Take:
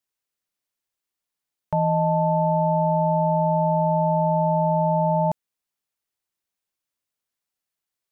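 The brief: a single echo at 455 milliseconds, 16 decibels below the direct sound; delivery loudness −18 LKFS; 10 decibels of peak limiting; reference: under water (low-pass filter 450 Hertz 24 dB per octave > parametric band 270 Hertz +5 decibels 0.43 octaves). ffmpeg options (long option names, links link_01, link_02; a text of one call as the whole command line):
ffmpeg -i in.wav -af "alimiter=limit=-22.5dB:level=0:latency=1,lowpass=frequency=450:width=0.5412,lowpass=frequency=450:width=1.3066,equalizer=frequency=270:width_type=o:width=0.43:gain=5,aecho=1:1:455:0.158,volume=15.5dB" out.wav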